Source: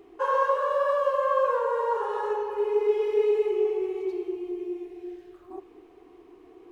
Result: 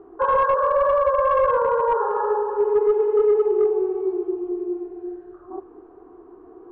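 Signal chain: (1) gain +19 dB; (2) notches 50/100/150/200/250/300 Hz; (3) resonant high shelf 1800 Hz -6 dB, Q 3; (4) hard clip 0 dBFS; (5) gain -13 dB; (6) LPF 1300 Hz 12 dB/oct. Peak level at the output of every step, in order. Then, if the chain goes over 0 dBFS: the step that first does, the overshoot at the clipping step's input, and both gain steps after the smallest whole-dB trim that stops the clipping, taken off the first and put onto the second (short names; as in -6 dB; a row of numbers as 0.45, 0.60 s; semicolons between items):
+7.0, +7.0, +9.5, 0.0, -13.0, -12.5 dBFS; step 1, 9.5 dB; step 1 +9 dB, step 5 -3 dB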